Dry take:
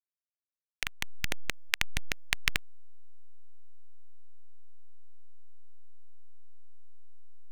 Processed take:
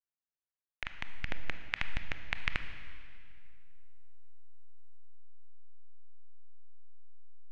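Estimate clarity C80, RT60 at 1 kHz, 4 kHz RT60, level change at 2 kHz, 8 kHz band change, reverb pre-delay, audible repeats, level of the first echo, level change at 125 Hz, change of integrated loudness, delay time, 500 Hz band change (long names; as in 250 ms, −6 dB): 10.0 dB, 2.2 s, 2.1 s, −4.5 dB, −22.0 dB, 23 ms, no echo audible, no echo audible, −1.5 dB, −6.0 dB, no echo audible, −3.5 dB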